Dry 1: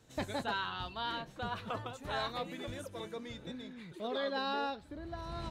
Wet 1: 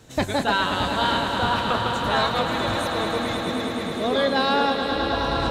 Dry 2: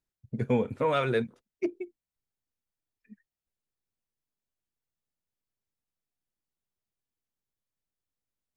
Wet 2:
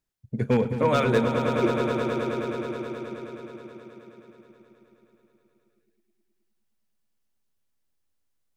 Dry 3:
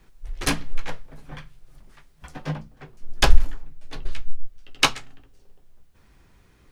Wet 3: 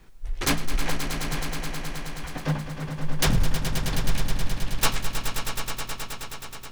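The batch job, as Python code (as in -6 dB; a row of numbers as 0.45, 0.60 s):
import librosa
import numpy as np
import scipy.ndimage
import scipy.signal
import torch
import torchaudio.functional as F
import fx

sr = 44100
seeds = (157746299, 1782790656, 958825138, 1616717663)

y = 10.0 ** (-18.0 / 20.0) * (np.abs((x / 10.0 ** (-18.0 / 20.0) + 3.0) % 4.0 - 2.0) - 1.0)
y = fx.echo_swell(y, sr, ms=106, loudest=5, wet_db=-9.5)
y = y * 10.0 ** (-9 / 20.0) / np.max(np.abs(y))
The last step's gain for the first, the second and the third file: +13.5, +4.0, +2.5 dB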